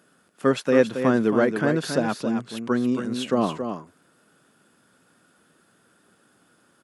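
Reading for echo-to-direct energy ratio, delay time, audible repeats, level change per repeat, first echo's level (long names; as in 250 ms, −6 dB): −7.5 dB, 274 ms, 1, repeats not evenly spaced, −7.5 dB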